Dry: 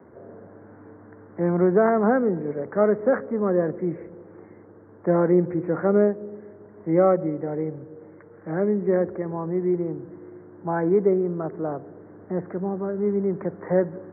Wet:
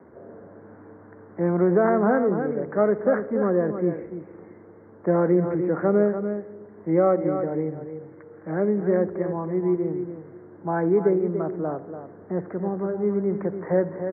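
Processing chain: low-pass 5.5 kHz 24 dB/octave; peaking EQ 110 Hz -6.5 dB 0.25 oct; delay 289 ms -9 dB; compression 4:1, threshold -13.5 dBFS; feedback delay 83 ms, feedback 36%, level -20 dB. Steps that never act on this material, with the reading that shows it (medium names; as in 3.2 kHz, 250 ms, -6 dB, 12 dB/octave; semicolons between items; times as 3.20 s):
low-pass 5.5 kHz: input has nothing above 1.7 kHz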